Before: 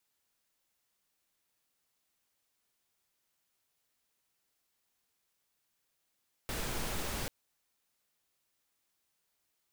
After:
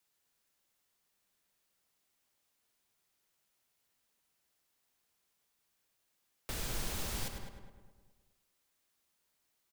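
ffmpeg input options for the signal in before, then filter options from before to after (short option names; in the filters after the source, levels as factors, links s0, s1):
-f lavfi -i "anoisesrc=c=pink:a=0.0767:d=0.79:r=44100:seed=1"
-filter_complex "[0:a]asplit=2[s0][s1];[s1]aecho=0:1:102|204|306|408:0.316|0.101|0.0324|0.0104[s2];[s0][s2]amix=inputs=2:normalize=0,acrossover=split=140|3000[s3][s4][s5];[s4]acompressor=threshold=0.00631:ratio=6[s6];[s3][s6][s5]amix=inputs=3:normalize=0,asplit=2[s7][s8];[s8]adelay=209,lowpass=f=1500:p=1,volume=0.501,asplit=2[s9][s10];[s10]adelay=209,lowpass=f=1500:p=1,volume=0.42,asplit=2[s11][s12];[s12]adelay=209,lowpass=f=1500:p=1,volume=0.42,asplit=2[s13][s14];[s14]adelay=209,lowpass=f=1500:p=1,volume=0.42,asplit=2[s15][s16];[s16]adelay=209,lowpass=f=1500:p=1,volume=0.42[s17];[s9][s11][s13][s15][s17]amix=inputs=5:normalize=0[s18];[s7][s18]amix=inputs=2:normalize=0"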